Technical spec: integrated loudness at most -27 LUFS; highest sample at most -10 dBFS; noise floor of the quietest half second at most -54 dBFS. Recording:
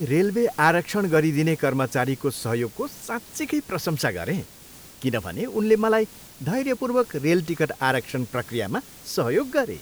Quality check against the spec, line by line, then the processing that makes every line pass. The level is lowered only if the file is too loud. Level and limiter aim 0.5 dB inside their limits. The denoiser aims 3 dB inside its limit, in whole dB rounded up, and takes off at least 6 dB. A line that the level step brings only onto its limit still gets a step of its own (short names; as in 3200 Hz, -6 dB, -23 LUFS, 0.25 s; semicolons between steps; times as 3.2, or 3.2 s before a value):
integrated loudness -24.0 LUFS: fail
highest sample -6.0 dBFS: fail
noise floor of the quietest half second -46 dBFS: fail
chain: denoiser 8 dB, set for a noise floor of -46 dBFS; gain -3.5 dB; limiter -10.5 dBFS